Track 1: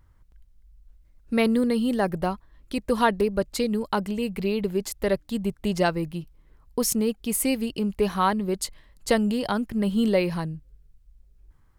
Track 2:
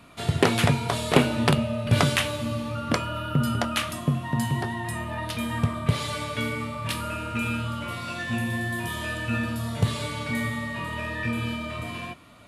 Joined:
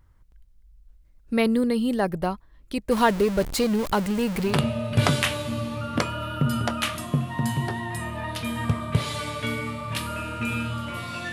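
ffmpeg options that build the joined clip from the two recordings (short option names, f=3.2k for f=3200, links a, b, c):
-filter_complex "[0:a]asettb=1/sr,asplit=3[a][b][c];[a]atrim=end=2.914[d];[b]atrim=start=2.91:end=4.6,asetpts=PTS-STARTPTS,afade=t=in:d=0.004:c=qsin,afade=t=out:st=1.686:d=0.004:c=qsin,aeval=exprs='val(0)+0.5*0.0447*sgn(val(0))':c=same[e];[c]atrim=start=4.596[f];[d][e]acrossfade=d=0.004:c1=hsin:c2=qsin[g];[g][f]acrossfade=d=0.004:c1=qsin:c2=hsin,apad=whole_dur=11.32,atrim=end=11.32,atrim=end=4.6,asetpts=PTS-STARTPTS[h];[1:a]atrim=start=1.38:end=8.26,asetpts=PTS-STARTPTS[i];[h][i]acrossfade=d=0.16:c1=tri:c2=tri"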